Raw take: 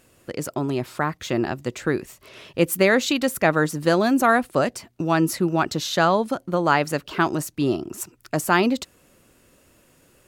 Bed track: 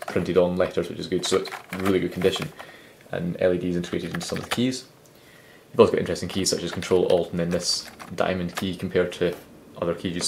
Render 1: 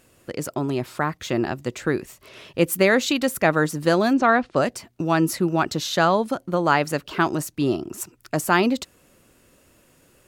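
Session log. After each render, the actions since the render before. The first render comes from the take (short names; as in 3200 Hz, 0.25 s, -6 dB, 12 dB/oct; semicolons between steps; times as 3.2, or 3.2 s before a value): 4.13–4.56 LPF 5300 Hz 24 dB/oct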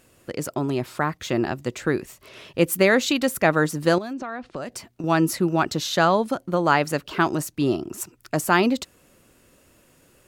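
3.98–5.04 compressor 8:1, threshold -28 dBFS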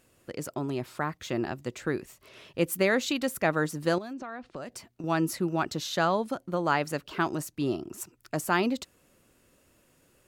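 gain -7 dB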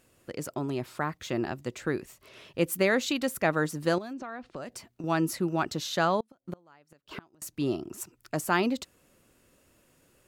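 6.2–7.42 flipped gate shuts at -24 dBFS, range -32 dB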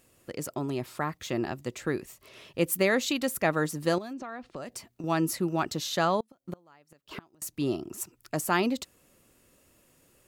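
high shelf 7400 Hz +5 dB; notch 1500 Hz, Q 17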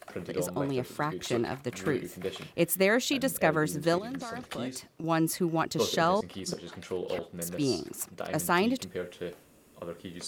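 add bed track -14 dB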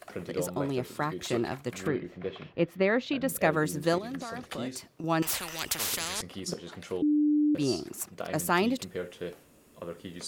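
1.87–3.29 air absorption 280 m; 5.22–6.22 spectral compressor 10:1; 7.02–7.55 bleep 298 Hz -21 dBFS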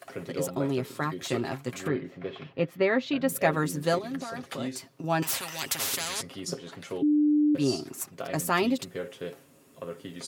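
HPF 89 Hz; comb 7.4 ms, depth 55%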